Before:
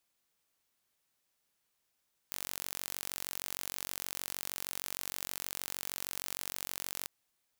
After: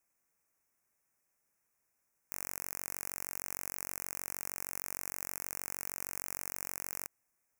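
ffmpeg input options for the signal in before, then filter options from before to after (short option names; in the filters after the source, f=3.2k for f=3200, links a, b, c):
-f lavfi -i "aevalsrc='0.282*eq(mod(n,950),0)':d=4.76:s=44100"
-af "asuperstop=centerf=3700:order=8:qfactor=1.3"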